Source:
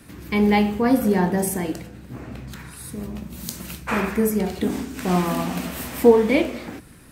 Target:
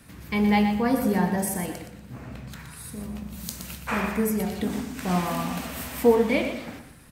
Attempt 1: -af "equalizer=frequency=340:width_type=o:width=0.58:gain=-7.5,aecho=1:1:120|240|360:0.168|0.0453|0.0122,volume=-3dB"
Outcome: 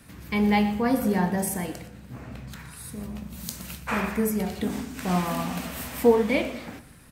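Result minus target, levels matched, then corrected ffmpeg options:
echo-to-direct −7 dB
-af "equalizer=frequency=340:width_type=o:width=0.58:gain=-7.5,aecho=1:1:120|240|360:0.376|0.101|0.0274,volume=-3dB"

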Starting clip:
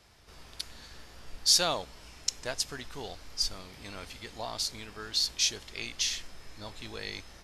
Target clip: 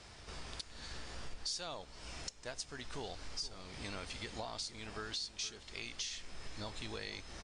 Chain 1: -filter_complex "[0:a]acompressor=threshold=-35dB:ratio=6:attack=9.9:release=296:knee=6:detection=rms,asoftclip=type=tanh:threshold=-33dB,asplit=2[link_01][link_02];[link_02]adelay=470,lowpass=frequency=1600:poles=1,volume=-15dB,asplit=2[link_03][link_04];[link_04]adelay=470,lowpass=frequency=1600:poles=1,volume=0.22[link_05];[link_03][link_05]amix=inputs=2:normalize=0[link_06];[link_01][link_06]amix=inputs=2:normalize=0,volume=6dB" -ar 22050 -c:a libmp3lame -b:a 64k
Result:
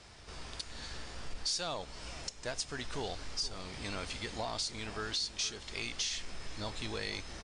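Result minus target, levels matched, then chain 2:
downward compressor: peak gain reduction −7.5 dB
-filter_complex "[0:a]acompressor=threshold=-44dB:ratio=6:attack=9.9:release=296:knee=6:detection=rms,asoftclip=type=tanh:threshold=-33dB,asplit=2[link_01][link_02];[link_02]adelay=470,lowpass=frequency=1600:poles=1,volume=-15dB,asplit=2[link_03][link_04];[link_04]adelay=470,lowpass=frequency=1600:poles=1,volume=0.22[link_05];[link_03][link_05]amix=inputs=2:normalize=0[link_06];[link_01][link_06]amix=inputs=2:normalize=0,volume=6dB" -ar 22050 -c:a libmp3lame -b:a 64k

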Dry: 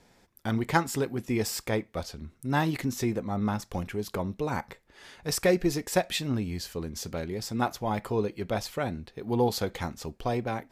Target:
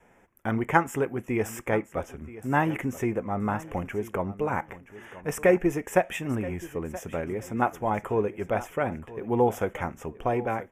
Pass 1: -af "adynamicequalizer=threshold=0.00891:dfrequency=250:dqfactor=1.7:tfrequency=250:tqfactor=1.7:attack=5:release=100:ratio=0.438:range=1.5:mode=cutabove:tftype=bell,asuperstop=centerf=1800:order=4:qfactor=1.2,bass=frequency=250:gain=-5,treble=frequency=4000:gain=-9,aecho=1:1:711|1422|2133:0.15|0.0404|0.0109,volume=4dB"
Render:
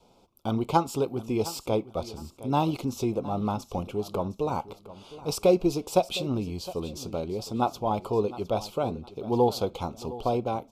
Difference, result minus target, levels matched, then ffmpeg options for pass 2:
2,000 Hz band −12.5 dB; echo 265 ms early
-af "adynamicequalizer=threshold=0.00891:dfrequency=250:dqfactor=1.7:tfrequency=250:tqfactor=1.7:attack=5:release=100:ratio=0.438:range=1.5:mode=cutabove:tftype=bell,asuperstop=centerf=4300:order=4:qfactor=1.2,bass=frequency=250:gain=-5,treble=frequency=4000:gain=-9,aecho=1:1:976|1952|2928:0.15|0.0404|0.0109,volume=4dB"

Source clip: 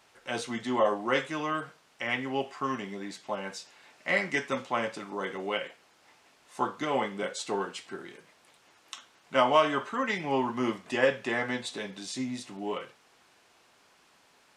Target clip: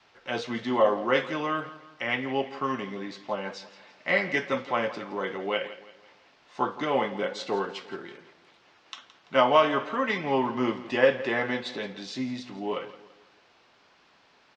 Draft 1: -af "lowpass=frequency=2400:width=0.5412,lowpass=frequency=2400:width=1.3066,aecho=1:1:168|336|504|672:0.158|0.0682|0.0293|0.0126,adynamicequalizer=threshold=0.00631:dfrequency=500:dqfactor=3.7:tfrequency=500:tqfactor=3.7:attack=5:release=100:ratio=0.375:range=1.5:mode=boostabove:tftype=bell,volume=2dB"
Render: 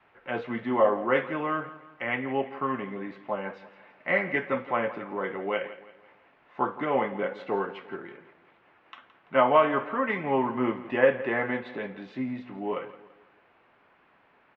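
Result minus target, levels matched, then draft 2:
4,000 Hz band −9.5 dB
-af "lowpass=frequency=5200:width=0.5412,lowpass=frequency=5200:width=1.3066,aecho=1:1:168|336|504|672:0.158|0.0682|0.0293|0.0126,adynamicequalizer=threshold=0.00631:dfrequency=500:dqfactor=3.7:tfrequency=500:tqfactor=3.7:attack=5:release=100:ratio=0.375:range=1.5:mode=boostabove:tftype=bell,volume=2dB"

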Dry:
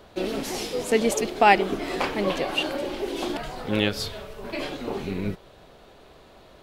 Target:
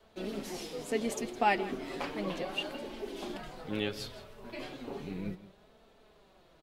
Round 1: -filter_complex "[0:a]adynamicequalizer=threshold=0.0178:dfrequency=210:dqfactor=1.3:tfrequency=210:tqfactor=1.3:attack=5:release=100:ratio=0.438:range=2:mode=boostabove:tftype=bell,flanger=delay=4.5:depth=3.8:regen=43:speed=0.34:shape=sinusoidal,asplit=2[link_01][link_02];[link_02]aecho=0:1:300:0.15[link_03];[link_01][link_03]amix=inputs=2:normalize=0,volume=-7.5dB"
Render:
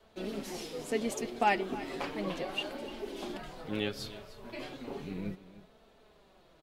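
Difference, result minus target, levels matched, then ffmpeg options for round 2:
echo 136 ms late
-filter_complex "[0:a]adynamicequalizer=threshold=0.0178:dfrequency=210:dqfactor=1.3:tfrequency=210:tqfactor=1.3:attack=5:release=100:ratio=0.438:range=2:mode=boostabove:tftype=bell,flanger=delay=4.5:depth=3.8:regen=43:speed=0.34:shape=sinusoidal,asplit=2[link_01][link_02];[link_02]aecho=0:1:164:0.15[link_03];[link_01][link_03]amix=inputs=2:normalize=0,volume=-7.5dB"

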